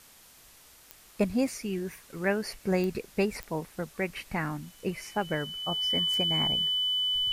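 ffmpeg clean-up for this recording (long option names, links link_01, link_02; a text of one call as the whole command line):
ffmpeg -i in.wav -af "adeclick=threshold=4,bandreject=frequency=3000:width=30,afftdn=noise_reduction=20:noise_floor=-55" out.wav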